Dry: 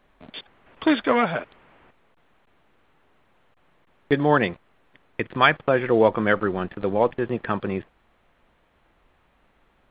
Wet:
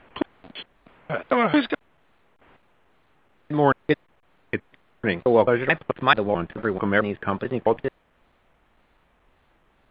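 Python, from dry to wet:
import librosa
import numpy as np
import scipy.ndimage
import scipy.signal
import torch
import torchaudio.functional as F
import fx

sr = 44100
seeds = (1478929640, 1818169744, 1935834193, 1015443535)

y = fx.block_reorder(x, sr, ms=219.0, group=4)
y = fx.wow_flutter(y, sr, seeds[0], rate_hz=2.1, depth_cents=120.0)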